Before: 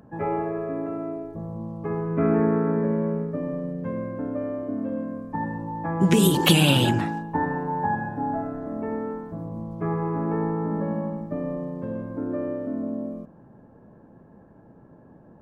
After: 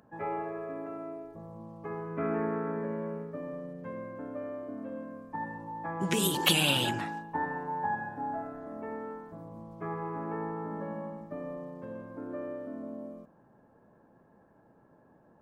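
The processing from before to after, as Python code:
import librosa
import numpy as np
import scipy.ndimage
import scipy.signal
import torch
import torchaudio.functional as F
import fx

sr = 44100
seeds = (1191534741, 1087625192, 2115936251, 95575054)

y = fx.low_shelf(x, sr, hz=440.0, db=-11.5)
y = y * librosa.db_to_amplitude(-3.5)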